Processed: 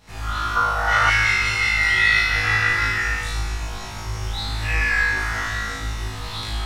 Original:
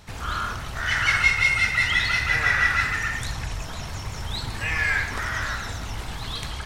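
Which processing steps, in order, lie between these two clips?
flutter between parallel walls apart 3.2 metres, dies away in 1 s
convolution reverb RT60 0.40 s, pre-delay 7 ms, DRR 0.5 dB
gain on a spectral selection 0:00.56–0:01.10, 450–1,500 Hz +12 dB
level −7 dB

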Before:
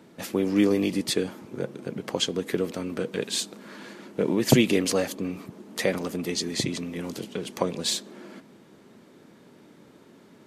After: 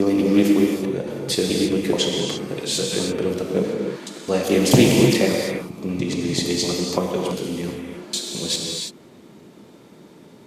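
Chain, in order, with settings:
slices reordered back to front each 214 ms, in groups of 4
parametric band 1,600 Hz −5 dB 0.74 octaves
convolution reverb, pre-delay 3 ms, DRR −1 dB
highs frequency-modulated by the lows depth 0.18 ms
level +3.5 dB

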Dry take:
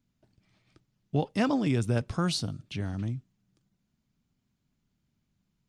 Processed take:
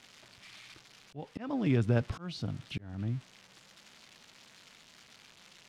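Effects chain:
spike at every zero crossing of −30.5 dBFS
volume swells 359 ms
low-pass filter 3,100 Hz 12 dB per octave

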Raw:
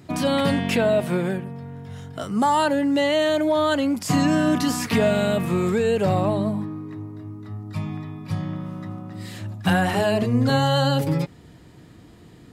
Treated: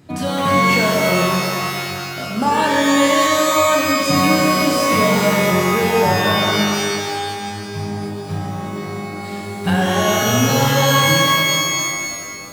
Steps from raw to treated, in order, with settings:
reverb with rising layers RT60 2.2 s, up +12 semitones, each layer −2 dB, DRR −1 dB
level −1 dB

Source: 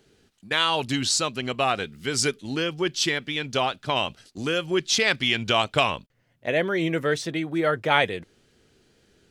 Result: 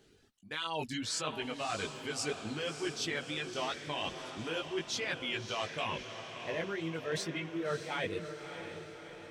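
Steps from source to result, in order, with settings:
chorus effect 2.9 Hz, delay 18 ms, depth 2.4 ms
reversed playback
downward compressor 6 to 1, threshold −33 dBFS, peak gain reduction 14 dB
reversed playback
reverb reduction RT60 1 s
feedback delay with all-pass diffusion 622 ms, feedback 57%, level −8.5 dB

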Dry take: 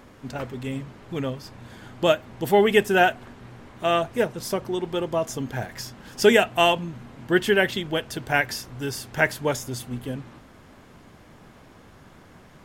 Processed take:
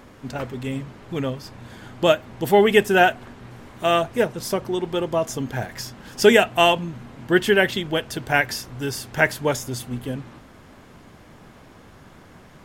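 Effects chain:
0:03.51–0:04.02: high-shelf EQ 7,800 Hz +7 dB
level +2.5 dB

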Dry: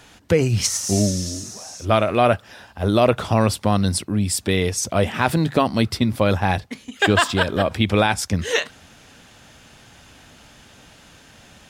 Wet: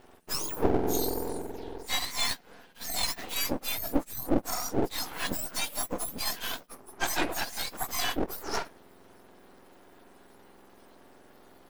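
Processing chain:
frequency axis turned over on the octave scale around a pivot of 1,600 Hz
half-wave rectification
level −4.5 dB

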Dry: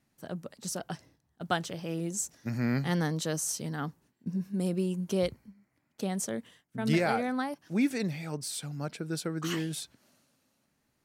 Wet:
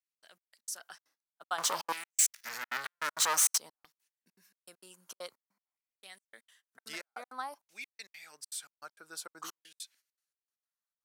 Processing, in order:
noise gate −58 dBFS, range −16 dB
parametric band 2,000 Hz −12 dB 2 octaves
0:01.58–0:03.58: leveller curve on the samples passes 5
gate pattern "xx.xx..x.xx" 199 BPM −60 dB
auto-filter high-pass saw down 0.52 Hz 940–2,400 Hz

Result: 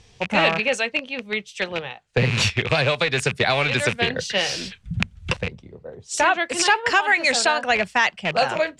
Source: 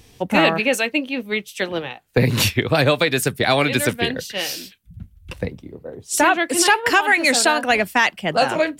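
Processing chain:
loose part that buzzes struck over −27 dBFS, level −12 dBFS
low-pass filter 7,600 Hz 24 dB per octave
parametric band 290 Hz −11 dB 0.5 octaves
0:02.69–0:05.37: multiband upward and downward compressor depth 100%
level −2 dB

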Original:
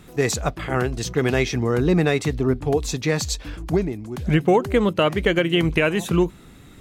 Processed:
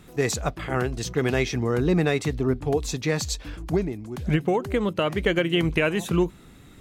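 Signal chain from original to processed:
0:04.35–0:05.09: downward compressor 2 to 1, threshold −18 dBFS, peak gain reduction 4 dB
level −3 dB

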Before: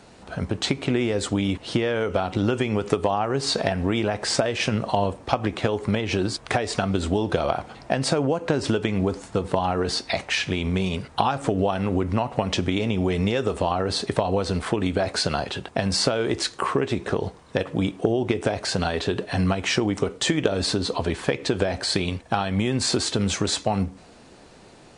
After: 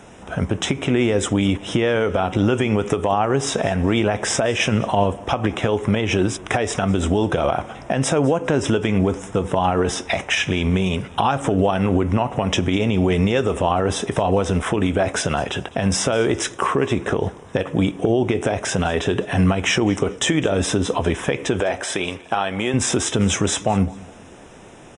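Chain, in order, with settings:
0:21.60–0:22.74: bass and treble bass −14 dB, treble −2 dB
brickwall limiter −13.5 dBFS, peak gain reduction 7 dB
Butterworth band-reject 4,400 Hz, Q 2.7
repeating echo 204 ms, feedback 33%, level −22 dB
level +6 dB

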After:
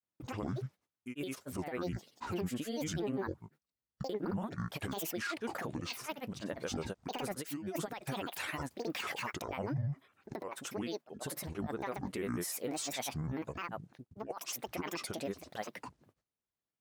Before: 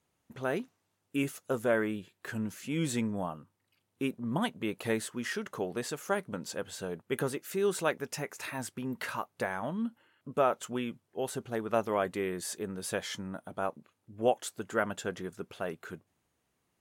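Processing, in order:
noise gate with hold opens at −60 dBFS
compressor whose output falls as the input rises −32 dBFS, ratio −0.5
brickwall limiter −28 dBFS, peak gain reduction 10 dB
granular cloud, pitch spread up and down by 12 semitones
level +1 dB

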